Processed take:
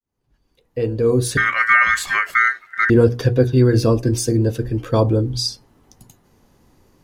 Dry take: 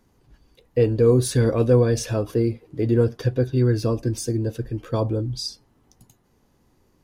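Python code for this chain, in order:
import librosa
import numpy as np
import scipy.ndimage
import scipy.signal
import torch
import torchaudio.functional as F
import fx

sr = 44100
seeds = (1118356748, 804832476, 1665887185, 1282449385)

y = fx.fade_in_head(x, sr, length_s=2.32)
y = fx.ring_mod(y, sr, carrier_hz=1700.0, at=(1.37, 2.9))
y = fx.hum_notches(y, sr, base_hz=60, count=8)
y = F.gain(torch.from_numpy(y), 7.5).numpy()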